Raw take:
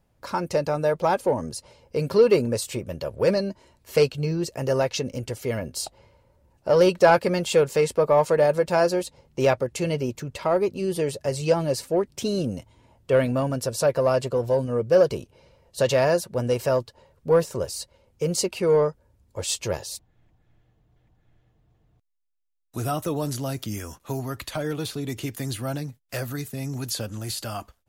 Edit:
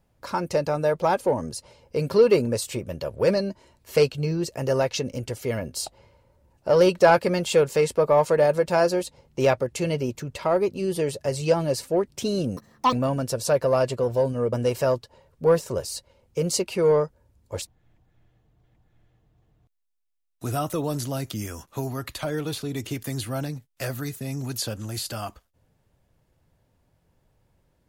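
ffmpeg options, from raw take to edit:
ffmpeg -i in.wav -filter_complex "[0:a]asplit=5[link_01][link_02][link_03][link_04][link_05];[link_01]atrim=end=12.574[link_06];[link_02]atrim=start=12.57:end=13.26,asetpts=PTS-STARTPTS,asetrate=85554,aresample=44100,atrim=end_sample=15685,asetpts=PTS-STARTPTS[link_07];[link_03]atrim=start=13.256:end=14.862[link_08];[link_04]atrim=start=16.368:end=19.462[link_09];[link_05]atrim=start=19.938[link_10];[link_06][link_07]acrossfade=duration=0.004:curve1=hsin:curve2=hsin[link_11];[link_11][link_08]acrossfade=duration=0.004:curve1=hsin:curve2=hsin[link_12];[link_12][link_09]acrossfade=duration=0.004:curve1=hsin:curve2=hsin[link_13];[link_13][link_10]acrossfade=duration=0.004:curve1=hsin:curve2=hsin" out.wav

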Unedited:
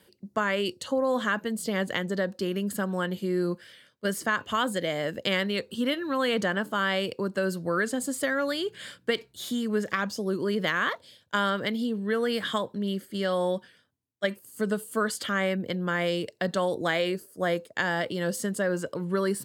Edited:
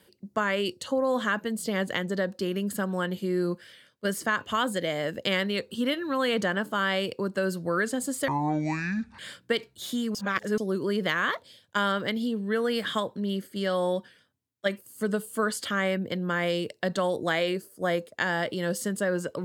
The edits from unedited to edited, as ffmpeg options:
ffmpeg -i in.wav -filter_complex "[0:a]asplit=5[link_01][link_02][link_03][link_04][link_05];[link_01]atrim=end=8.284[link_06];[link_02]atrim=start=8.28:end=8.77,asetpts=PTS-STARTPTS,asetrate=23814,aresample=44100[link_07];[link_03]atrim=start=8.766:end=9.732[link_08];[link_04]atrim=start=9.728:end=10.162,asetpts=PTS-STARTPTS,areverse[link_09];[link_05]atrim=start=10.158[link_10];[link_06][link_07]acrossfade=duration=0.004:curve1=hsin:curve2=hsin[link_11];[link_11][link_08]acrossfade=duration=0.004:curve1=hsin:curve2=hsin[link_12];[link_12][link_09]acrossfade=duration=0.004:curve1=hsin:curve2=hsin[link_13];[link_13][link_10]acrossfade=duration=0.004:curve1=hsin:curve2=hsin" out.wav

